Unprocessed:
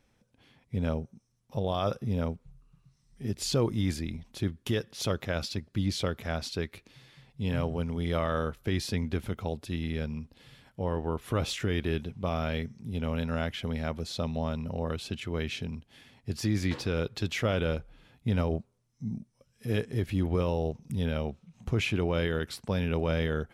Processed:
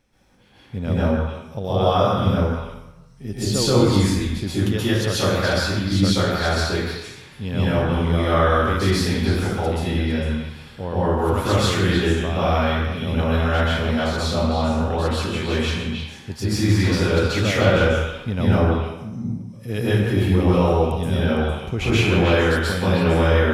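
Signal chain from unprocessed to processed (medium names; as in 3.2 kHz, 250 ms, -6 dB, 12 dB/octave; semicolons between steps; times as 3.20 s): repeats whose band climbs or falls 152 ms, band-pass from 1.2 kHz, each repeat 1.4 oct, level -2 dB; plate-style reverb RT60 0.96 s, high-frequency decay 0.65×, pre-delay 115 ms, DRR -9.5 dB; trim +2 dB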